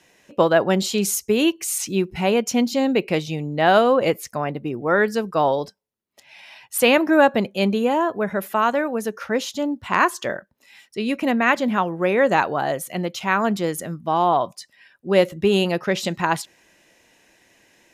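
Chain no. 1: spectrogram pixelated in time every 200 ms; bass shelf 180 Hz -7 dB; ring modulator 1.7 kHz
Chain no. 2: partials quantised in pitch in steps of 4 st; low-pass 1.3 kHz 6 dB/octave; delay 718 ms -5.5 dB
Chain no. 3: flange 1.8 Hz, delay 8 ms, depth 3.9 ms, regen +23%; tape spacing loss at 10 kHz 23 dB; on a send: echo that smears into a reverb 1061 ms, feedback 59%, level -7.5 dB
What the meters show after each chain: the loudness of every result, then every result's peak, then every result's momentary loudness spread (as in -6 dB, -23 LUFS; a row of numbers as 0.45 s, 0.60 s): -27.0 LUFS, -20.0 LUFS, -25.5 LUFS; -5.5 dBFS, -3.5 dBFS, -7.0 dBFS; 11 LU, 10 LU, 11 LU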